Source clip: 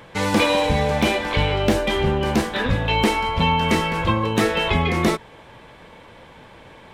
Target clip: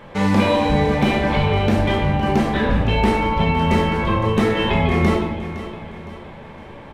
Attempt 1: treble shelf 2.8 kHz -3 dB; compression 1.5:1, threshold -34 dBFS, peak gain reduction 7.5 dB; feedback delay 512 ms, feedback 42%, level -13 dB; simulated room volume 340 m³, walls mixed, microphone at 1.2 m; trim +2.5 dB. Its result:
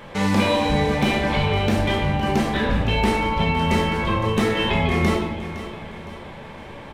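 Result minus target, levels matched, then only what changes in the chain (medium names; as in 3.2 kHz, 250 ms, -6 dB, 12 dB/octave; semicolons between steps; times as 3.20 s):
4 kHz band +3.5 dB; compression: peak gain reduction +3 dB
change: treble shelf 2.8 kHz -10.5 dB; change: compression 1.5:1, threshold -25 dBFS, peak gain reduction 4.5 dB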